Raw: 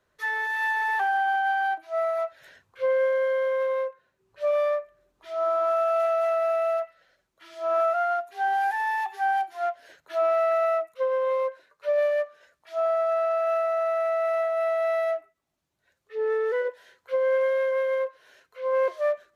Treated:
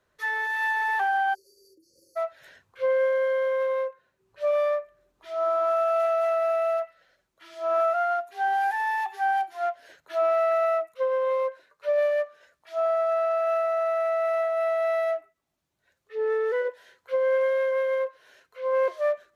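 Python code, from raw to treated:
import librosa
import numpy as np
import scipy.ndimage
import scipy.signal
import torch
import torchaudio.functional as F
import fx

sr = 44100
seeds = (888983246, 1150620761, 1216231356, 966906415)

y = fx.spec_erase(x, sr, start_s=1.34, length_s=0.82, low_hz=570.0, high_hz=4300.0)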